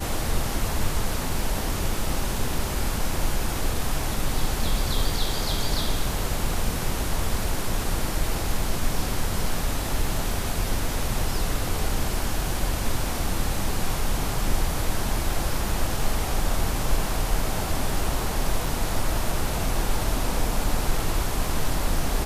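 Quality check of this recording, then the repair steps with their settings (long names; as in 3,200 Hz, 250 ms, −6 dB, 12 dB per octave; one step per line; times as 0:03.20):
0:18.66: drop-out 2.8 ms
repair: repair the gap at 0:18.66, 2.8 ms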